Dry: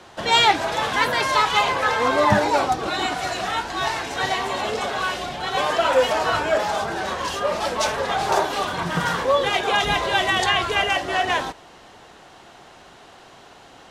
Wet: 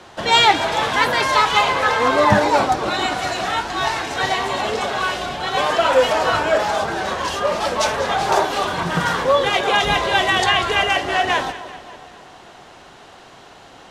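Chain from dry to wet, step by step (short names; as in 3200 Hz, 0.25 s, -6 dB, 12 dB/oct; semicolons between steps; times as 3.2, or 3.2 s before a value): high shelf 11000 Hz -4 dB; on a send: split-band echo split 1100 Hz, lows 0.278 s, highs 0.195 s, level -14.5 dB; on the sum: gain +3 dB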